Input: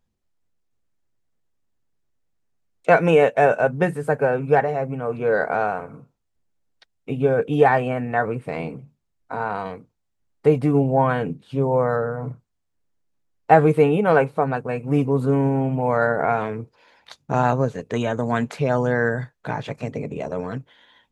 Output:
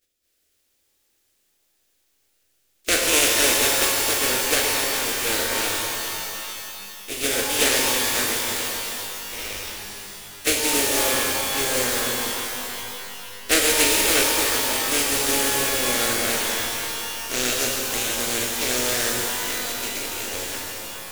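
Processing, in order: spectral contrast lowered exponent 0.25; 8.61–10.47 ring modulator 1400 Hz; fixed phaser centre 380 Hz, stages 4; shimmer reverb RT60 2.9 s, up +12 st, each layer -2 dB, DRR -0.5 dB; gain -4 dB

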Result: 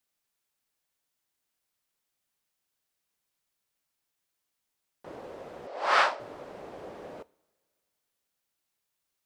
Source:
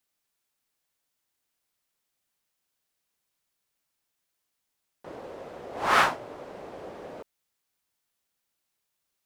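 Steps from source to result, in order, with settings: 5.67–6.2 speaker cabinet 500–7700 Hz, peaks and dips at 570 Hz +6 dB, 4700 Hz +4 dB, 6700 Hz -5 dB; two-slope reverb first 0.5 s, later 2.2 s, from -17 dB, DRR 19 dB; gain -2 dB

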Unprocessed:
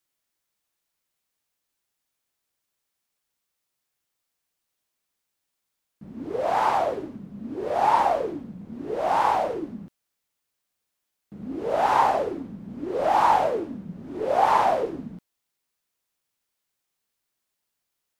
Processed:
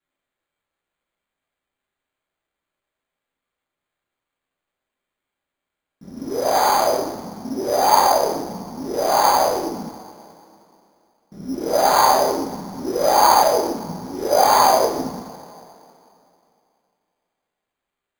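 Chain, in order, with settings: two-slope reverb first 0.64 s, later 2.8 s, from -18 dB, DRR -5 dB; careless resampling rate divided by 8×, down filtered, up hold

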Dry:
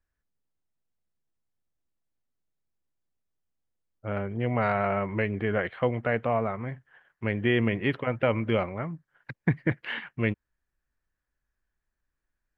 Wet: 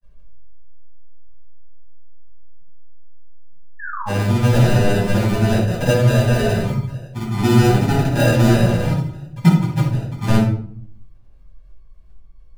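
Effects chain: G.711 law mismatch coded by mu; spectral gate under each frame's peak -20 dB strong; low shelf 170 Hz +9 dB; notch 1900 Hz, Q 5.8; in parallel at +0.5 dB: compressor, threshold -42 dBFS, peak gain reduction 25 dB; on the sum: sample-and-hold 40×; grains, pitch spread up and down by 0 st; painted sound fall, 3.79–4.11, 740–1800 Hz -35 dBFS; shoebox room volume 800 m³, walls furnished, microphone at 8.8 m; gain -4.5 dB

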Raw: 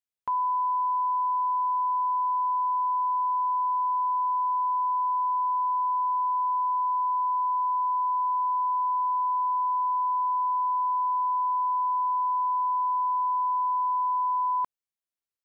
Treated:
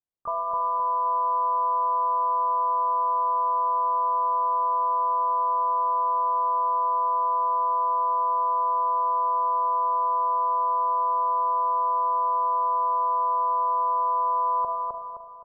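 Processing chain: LPF 1000 Hz 24 dB/oct; harmoniser -12 st -18 dB, -7 st -5 dB, +3 st -5 dB; feedback echo 0.26 s, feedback 42%, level -3 dB; spring tank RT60 1.7 s, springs 33/37 ms, DRR 5.5 dB

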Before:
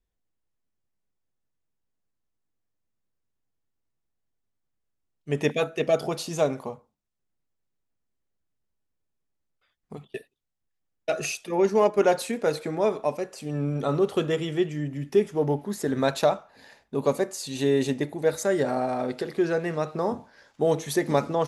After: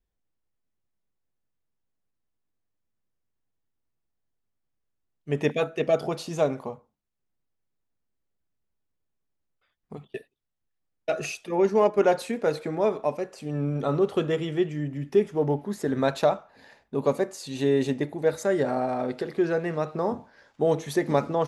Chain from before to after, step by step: high shelf 4400 Hz -8 dB

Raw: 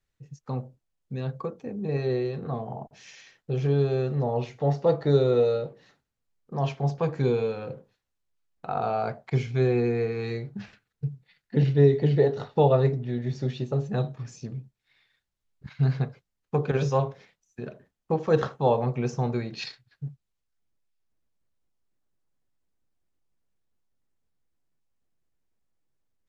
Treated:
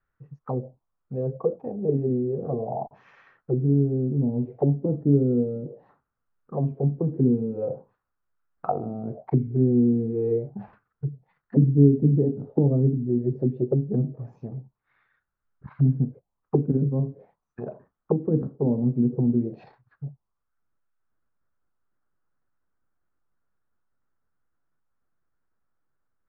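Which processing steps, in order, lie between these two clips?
envelope low-pass 260–1400 Hz down, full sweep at -23 dBFS

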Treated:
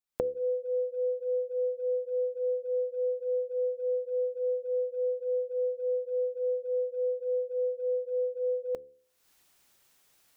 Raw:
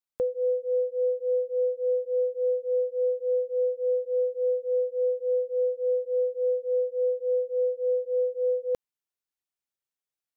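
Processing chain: recorder AGC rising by 57 dB/s; de-hum 72.72 Hz, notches 7; gain -4 dB

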